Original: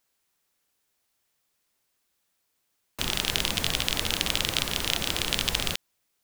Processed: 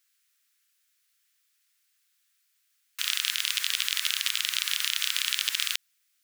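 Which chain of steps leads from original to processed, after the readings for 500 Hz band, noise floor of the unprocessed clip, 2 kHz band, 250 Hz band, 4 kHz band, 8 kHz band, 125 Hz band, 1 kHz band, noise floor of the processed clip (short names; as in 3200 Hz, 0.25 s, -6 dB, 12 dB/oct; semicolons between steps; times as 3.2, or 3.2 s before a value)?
under -35 dB, -76 dBFS, +0.5 dB, under -40 dB, 0.0 dB, +1.0 dB, under -35 dB, -8.5 dB, -72 dBFS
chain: limiter -9 dBFS, peak gain reduction 7.5 dB; inverse Chebyshev high-pass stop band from 710 Hz, stop band 40 dB; gain +3.5 dB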